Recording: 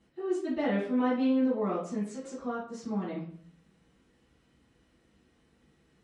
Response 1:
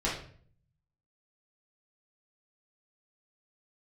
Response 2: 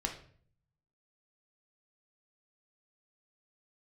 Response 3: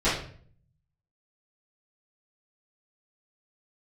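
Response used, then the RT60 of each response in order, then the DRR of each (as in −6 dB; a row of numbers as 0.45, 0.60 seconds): 3; 0.50, 0.50, 0.50 seconds; −7.5, 2.0, −15.0 decibels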